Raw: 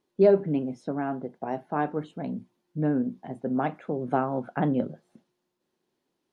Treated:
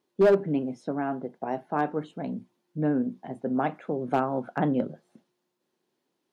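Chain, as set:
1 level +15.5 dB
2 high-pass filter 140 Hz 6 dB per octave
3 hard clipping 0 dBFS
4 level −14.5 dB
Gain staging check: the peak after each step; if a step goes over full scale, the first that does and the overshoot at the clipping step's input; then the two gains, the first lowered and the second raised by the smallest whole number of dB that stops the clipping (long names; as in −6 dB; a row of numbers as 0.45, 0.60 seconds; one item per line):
+6.0, +6.0, 0.0, −14.5 dBFS
step 1, 6.0 dB
step 1 +9.5 dB, step 4 −8.5 dB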